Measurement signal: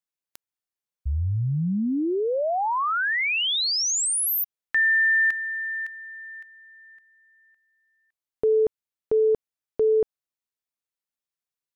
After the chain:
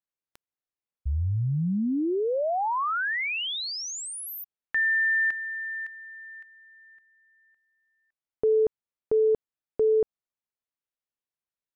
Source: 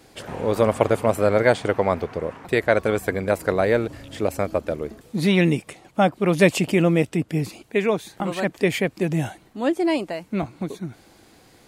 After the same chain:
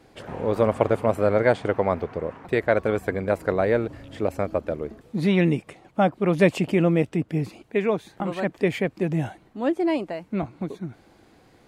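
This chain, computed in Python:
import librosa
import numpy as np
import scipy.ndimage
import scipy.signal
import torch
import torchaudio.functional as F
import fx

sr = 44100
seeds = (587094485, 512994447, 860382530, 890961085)

y = fx.high_shelf(x, sr, hz=3700.0, db=-12.0)
y = y * 10.0 ** (-1.5 / 20.0)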